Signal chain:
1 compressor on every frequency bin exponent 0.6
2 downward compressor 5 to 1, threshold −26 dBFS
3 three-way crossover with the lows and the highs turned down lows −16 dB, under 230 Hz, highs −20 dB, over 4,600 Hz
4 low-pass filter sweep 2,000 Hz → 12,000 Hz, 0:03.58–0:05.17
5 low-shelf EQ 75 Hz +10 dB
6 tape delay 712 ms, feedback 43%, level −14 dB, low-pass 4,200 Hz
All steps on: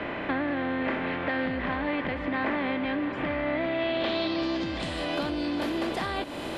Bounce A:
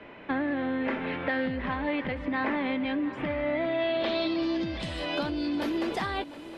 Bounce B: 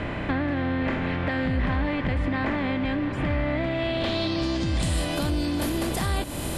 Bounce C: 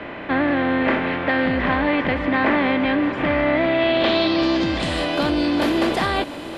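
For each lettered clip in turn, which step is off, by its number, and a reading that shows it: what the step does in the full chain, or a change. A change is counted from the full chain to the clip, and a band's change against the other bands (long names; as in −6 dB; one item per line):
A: 1, 250 Hz band +1.5 dB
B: 3, 125 Hz band +12.5 dB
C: 2, average gain reduction 8.5 dB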